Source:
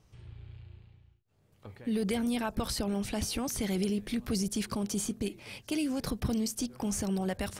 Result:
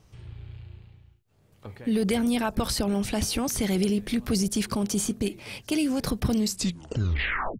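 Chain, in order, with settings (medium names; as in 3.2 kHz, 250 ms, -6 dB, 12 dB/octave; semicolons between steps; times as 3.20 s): tape stop on the ending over 1.21 s; trim +6 dB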